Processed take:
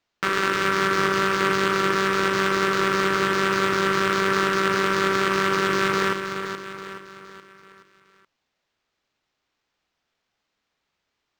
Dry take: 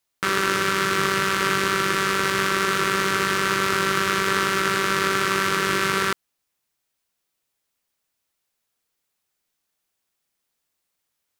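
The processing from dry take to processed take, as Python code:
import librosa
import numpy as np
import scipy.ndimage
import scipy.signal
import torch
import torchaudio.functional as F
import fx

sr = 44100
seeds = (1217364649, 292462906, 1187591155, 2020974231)

y = fx.low_shelf(x, sr, hz=86.0, db=-9.0)
y = fx.echo_feedback(y, sr, ms=424, feedback_pct=46, wet_db=-8.0)
y = np.interp(np.arange(len(y)), np.arange(len(y))[::4], y[::4])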